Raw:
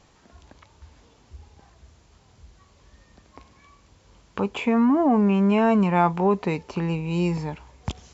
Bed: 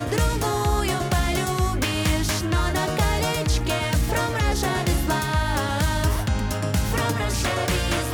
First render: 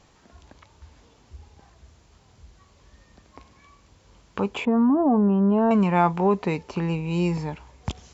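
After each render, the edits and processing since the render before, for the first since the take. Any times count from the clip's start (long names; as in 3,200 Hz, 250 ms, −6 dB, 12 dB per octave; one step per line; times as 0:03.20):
0:04.65–0:05.71: moving average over 19 samples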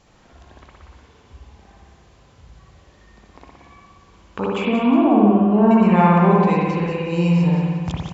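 repeating echo 180 ms, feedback 40%, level −8.5 dB
spring reverb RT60 1.4 s, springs 58 ms, chirp 35 ms, DRR −4 dB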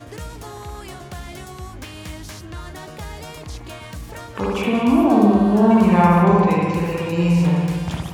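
mix in bed −12 dB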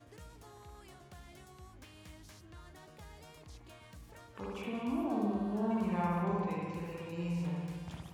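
level −19.5 dB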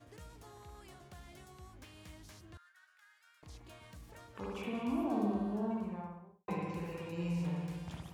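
0:02.57–0:03.43: four-pole ladder high-pass 1,400 Hz, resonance 75%
0:05.23–0:06.48: fade out and dull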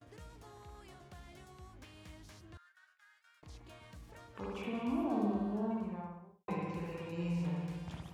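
noise gate with hold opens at −55 dBFS
high-shelf EQ 8,800 Hz −7.5 dB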